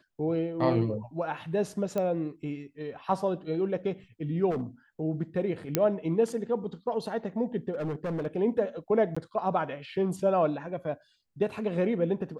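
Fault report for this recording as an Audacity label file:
1.980000	1.980000	pop -18 dBFS
4.500000	4.620000	clipped -27 dBFS
5.750000	5.750000	pop -8 dBFS
7.710000	8.270000	clipped -28.5 dBFS
9.150000	9.160000	dropout 15 ms

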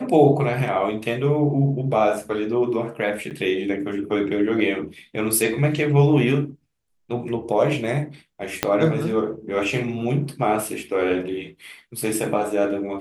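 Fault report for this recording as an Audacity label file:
3.300000	3.310000	dropout 8.1 ms
8.630000	8.630000	pop -3 dBFS

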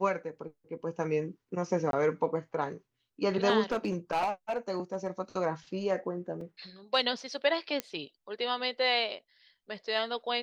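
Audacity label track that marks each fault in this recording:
1.910000	1.930000	dropout 22 ms
3.720000	5.080000	clipped -25 dBFS
6.410000	6.410000	dropout 2.8 ms
7.800000	7.800000	pop -15 dBFS

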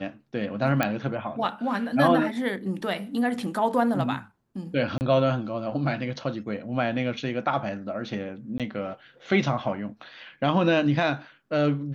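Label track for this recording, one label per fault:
0.830000	0.830000	pop -9 dBFS
4.980000	5.010000	dropout 29 ms
8.580000	8.600000	dropout 17 ms

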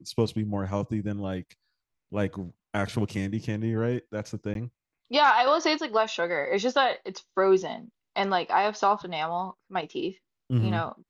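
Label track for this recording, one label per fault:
4.540000	4.550000	dropout 12 ms

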